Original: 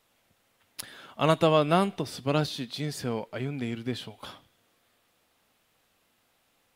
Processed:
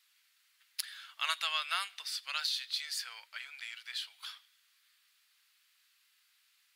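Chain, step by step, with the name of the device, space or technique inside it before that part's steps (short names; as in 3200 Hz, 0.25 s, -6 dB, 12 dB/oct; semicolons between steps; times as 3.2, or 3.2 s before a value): headphones lying on a table (HPF 1500 Hz 24 dB/oct; bell 4500 Hz +6 dB 0.33 oct)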